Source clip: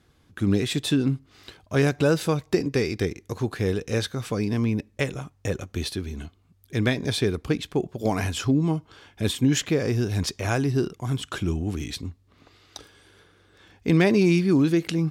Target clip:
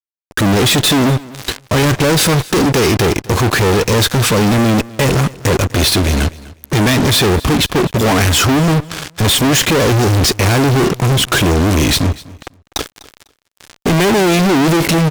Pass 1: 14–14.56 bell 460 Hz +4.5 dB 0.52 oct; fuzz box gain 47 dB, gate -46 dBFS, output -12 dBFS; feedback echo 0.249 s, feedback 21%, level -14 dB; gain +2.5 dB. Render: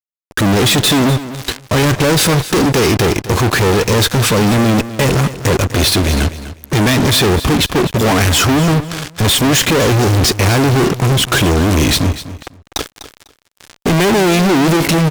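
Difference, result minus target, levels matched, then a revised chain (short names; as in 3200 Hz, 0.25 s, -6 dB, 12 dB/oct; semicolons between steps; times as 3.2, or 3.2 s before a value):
echo-to-direct +6.5 dB
14–14.56 bell 460 Hz +4.5 dB 0.52 oct; fuzz box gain 47 dB, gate -46 dBFS, output -12 dBFS; feedback echo 0.249 s, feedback 21%, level -20.5 dB; gain +2.5 dB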